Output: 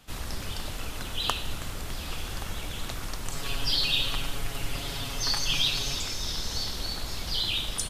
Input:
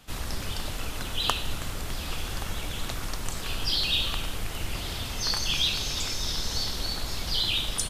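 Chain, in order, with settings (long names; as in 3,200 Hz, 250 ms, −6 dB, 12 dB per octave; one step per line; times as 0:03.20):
0:03.32–0:05.97: comb filter 7.2 ms, depth 77%
level −2 dB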